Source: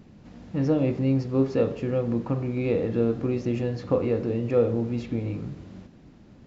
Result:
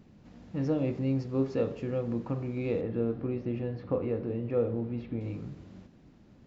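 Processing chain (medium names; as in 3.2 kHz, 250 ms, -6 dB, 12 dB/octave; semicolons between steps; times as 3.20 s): 2.81–5.21 s: distance through air 270 m; trim -6 dB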